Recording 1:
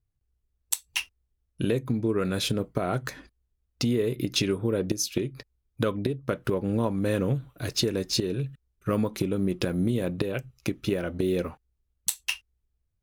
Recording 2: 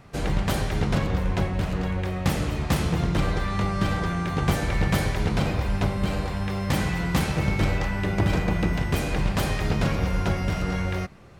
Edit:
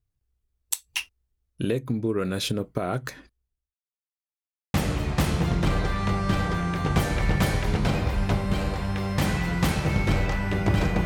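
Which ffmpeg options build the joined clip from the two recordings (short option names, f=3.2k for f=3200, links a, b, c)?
-filter_complex "[0:a]apad=whole_dur=11.05,atrim=end=11.05,asplit=2[a][b];[a]atrim=end=3.75,asetpts=PTS-STARTPTS,afade=t=out:st=3.01:d=0.74:c=qsin[c];[b]atrim=start=3.75:end=4.74,asetpts=PTS-STARTPTS,volume=0[d];[1:a]atrim=start=2.26:end=8.57,asetpts=PTS-STARTPTS,afade=t=in:d=0.004:c=hsin[e];[c][d][e]concat=n=3:v=0:a=1"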